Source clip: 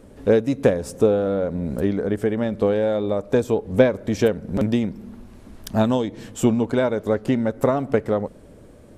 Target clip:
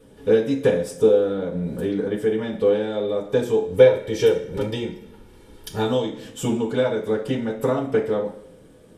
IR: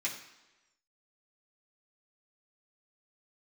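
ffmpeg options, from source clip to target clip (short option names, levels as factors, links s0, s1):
-filter_complex "[0:a]asettb=1/sr,asplit=3[s0][s1][s2];[s0]atrim=end=3.694[s3];[s1]atrim=start=3.69:end=5.87,asetpts=PTS-STARTPTS,afade=t=in:d=0.004:c=qsin,afade=t=out:st=2.176:d=0.004:c=qsin,aecho=1:1:2.2:0.56,atrim=end_sample=96138[s4];[s2]atrim=start=5.866[s5];[s3][s4]acrossfade=d=0.004:c1=hsin:c2=qsin[s6];[s6][s5]acrossfade=d=0.004:c1=qsin:c2=hsin[s7];[1:a]atrim=start_sample=2205,asetrate=66150,aresample=44100[s8];[s7][s8]afir=irnorm=-1:irlink=0"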